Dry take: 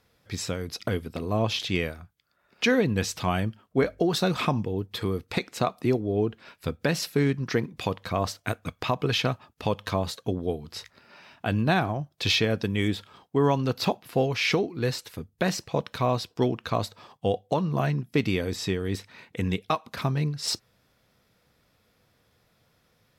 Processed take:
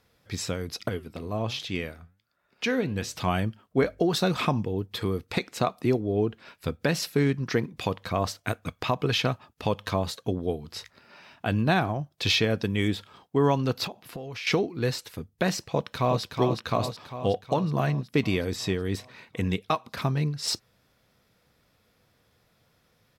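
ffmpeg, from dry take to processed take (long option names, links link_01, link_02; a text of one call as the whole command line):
ffmpeg -i in.wav -filter_complex "[0:a]asettb=1/sr,asplit=3[link_01][link_02][link_03];[link_01]atrim=end=0.894[link_04];[link_02]atrim=start=0.89:end=3.15,asetpts=PTS-STARTPTS,afade=type=in:duration=0.004:curve=qsin,afade=type=out:start_time=2.256:duration=0.004:curve=qsin,flanger=delay=5.7:depth=6.7:regen=84:speed=1.3:shape=triangular[link_05];[link_03]atrim=start=3.146[link_06];[link_04][link_05]acrossfade=duration=0.004:curve1=hsin:curve2=qsin[link_07];[link_07][link_06]acrossfade=duration=0.004:curve1=qsin:curve2=hsin,asettb=1/sr,asplit=3[link_08][link_09][link_10];[link_08]atrim=end=13.864[link_11];[link_09]atrim=start=13.86:end=14.47,asetpts=PTS-STARTPTS,afade=type=in:duration=0.004:curve=qsin,afade=type=out:start_time=0.606:duration=0.004:curve=qsin,acompressor=threshold=-33dB:ratio=10:attack=3.2:release=140:knee=1:detection=peak[link_12];[link_10]atrim=start=14.466[link_13];[link_11][link_12]acrossfade=duration=0.004:curve1=hsin:curve2=qsin[link_14];[link_14][link_13]acrossfade=duration=0.004:curve1=qsin:curve2=hsin,asplit=2[link_15][link_16];[link_16]afade=type=in:start_time=15.59:duration=0.01,afade=type=out:start_time=16.22:duration=0.01,aecho=0:1:370|740|1110|1480|1850|2220|2590|2960|3330|3700:0.562341|0.365522|0.237589|0.154433|0.100381|0.0652479|0.0424112|0.0275673|0.0179187|0.0116472[link_17];[link_15][link_17]amix=inputs=2:normalize=0" out.wav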